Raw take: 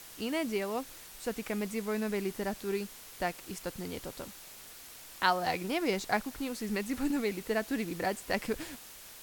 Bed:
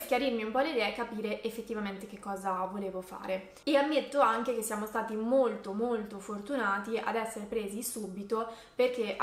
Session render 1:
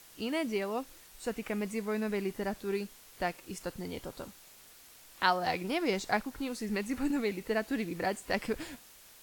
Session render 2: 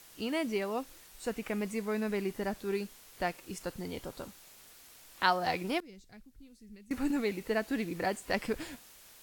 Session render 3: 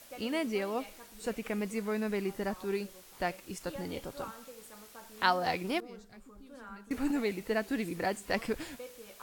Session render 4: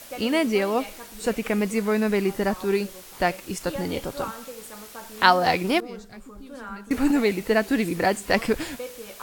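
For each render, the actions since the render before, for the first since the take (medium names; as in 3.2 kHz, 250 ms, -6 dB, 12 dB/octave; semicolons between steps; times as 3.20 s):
noise print and reduce 6 dB
5.80–6.91 s: amplifier tone stack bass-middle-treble 10-0-1
add bed -18.5 dB
trim +10.5 dB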